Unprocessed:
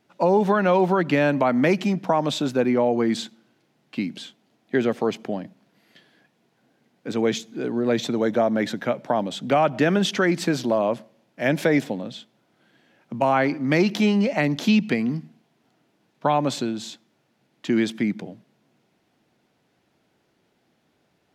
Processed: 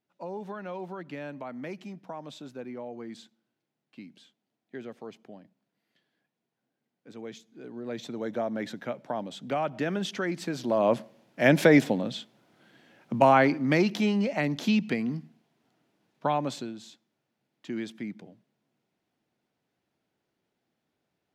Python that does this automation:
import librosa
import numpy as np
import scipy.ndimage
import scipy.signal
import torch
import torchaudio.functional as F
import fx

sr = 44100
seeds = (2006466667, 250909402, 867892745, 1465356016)

y = fx.gain(x, sr, db=fx.line((7.35, -19.0), (8.4, -10.0), (10.54, -10.0), (10.94, 1.5), (13.25, 1.5), (13.98, -6.0), (16.32, -6.0), (16.83, -13.0)))